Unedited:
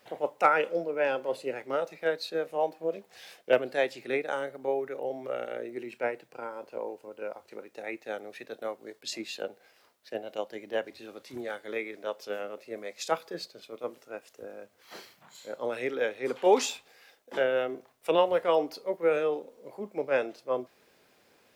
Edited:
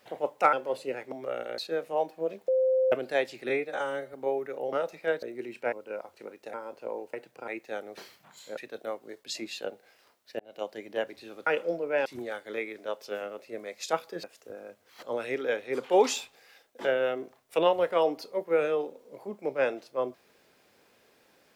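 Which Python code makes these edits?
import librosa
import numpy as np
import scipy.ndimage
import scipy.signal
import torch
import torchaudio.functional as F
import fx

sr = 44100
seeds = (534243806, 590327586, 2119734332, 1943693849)

y = fx.edit(x, sr, fx.move(start_s=0.53, length_s=0.59, to_s=11.24),
    fx.swap(start_s=1.71, length_s=0.5, other_s=5.14, other_length_s=0.46),
    fx.bleep(start_s=3.11, length_s=0.44, hz=520.0, db=-21.0),
    fx.stretch_span(start_s=4.12, length_s=0.43, factor=1.5),
    fx.swap(start_s=6.1, length_s=0.34, other_s=7.04, other_length_s=0.81),
    fx.fade_in_span(start_s=10.17, length_s=0.27),
    fx.cut(start_s=13.42, length_s=0.74),
    fx.move(start_s=14.95, length_s=0.6, to_s=8.35), tone=tone)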